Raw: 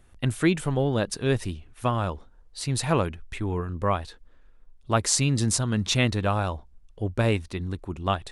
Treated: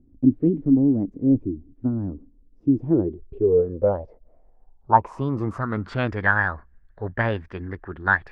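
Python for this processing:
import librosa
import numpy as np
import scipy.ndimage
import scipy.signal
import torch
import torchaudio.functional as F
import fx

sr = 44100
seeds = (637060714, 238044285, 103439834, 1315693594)

y = fx.formant_shift(x, sr, semitones=4)
y = fx.filter_sweep_lowpass(y, sr, from_hz=280.0, to_hz=1700.0, start_s=2.62, end_s=6.19, q=7.8)
y = F.gain(torch.from_numpy(y), -2.0).numpy()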